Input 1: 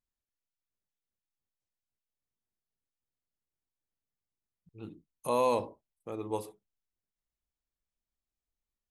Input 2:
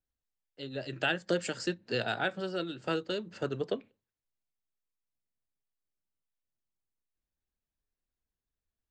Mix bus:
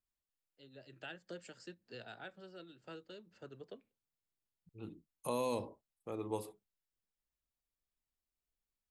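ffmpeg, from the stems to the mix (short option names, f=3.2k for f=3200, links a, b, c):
-filter_complex "[0:a]bandreject=f=6k:w=14,volume=-3dB[a];[1:a]volume=-18dB[b];[a][b]amix=inputs=2:normalize=0,acrossover=split=380|3000[c][d][e];[d]acompressor=threshold=-37dB:ratio=6[f];[c][f][e]amix=inputs=3:normalize=0"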